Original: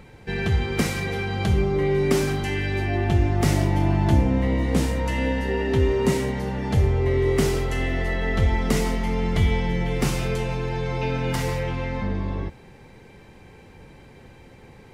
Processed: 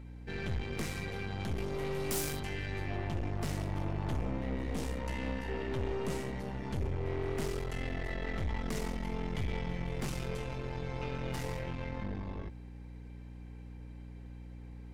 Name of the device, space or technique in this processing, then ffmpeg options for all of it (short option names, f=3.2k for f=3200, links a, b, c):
valve amplifier with mains hum: -filter_complex "[0:a]aeval=exprs='(tanh(14.1*val(0)+0.75)-tanh(0.75))/14.1':c=same,aeval=exprs='val(0)+0.0141*(sin(2*PI*60*n/s)+sin(2*PI*2*60*n/s)/2+sin(2*PI*3*60*n/s)/3+sin(2*PI*4*60*n/s)/4+sin(2*PI*5*60*n/s)/5)':c=same,asettb=1/sr,asplit=3[a][b][c];[a]atrim=end=1.574[d];[b]atrim=start=1.57:end=2.4,asetpts=PTS-STARTPTS,afade=t=in:d=0.004:c=qsin,afade=t=out:st=0.826:d=0.004:c=qsin,aemphasis=mode=production:type=75fm[e];[c]atrim=start=2.396[f];[d][e]acrossfade=d=0.004:c1=hsin:c2=qsin[g];[g][f]acrossfade=d=0.004:c1=qsin:c2=hsin,volume=-8.5dB"